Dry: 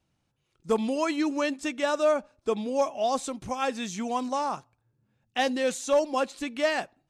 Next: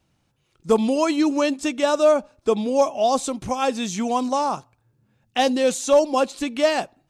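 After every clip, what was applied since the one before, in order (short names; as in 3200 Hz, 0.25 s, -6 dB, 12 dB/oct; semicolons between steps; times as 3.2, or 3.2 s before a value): dynamic EQ 1800 Hz, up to -7 dB, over -45 dBFS, Q 1.5; gain +7.5 dB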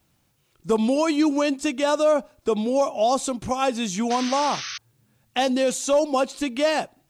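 requantised 12-bit, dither triangular; painted sound noise, 4.1–4.78, 1100–6400 Hz -33 dBFS; limiter -12 dBFS, peak gain reduction 4.5 dB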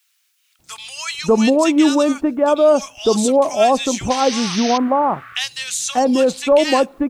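bands offset in time highs, lows 0.59 s, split 1500 Hz; gain +7 dB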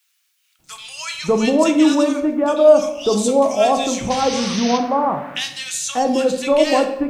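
shoebox room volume 270 m³, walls mixed, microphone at 0.63 m; gain -2.5 dB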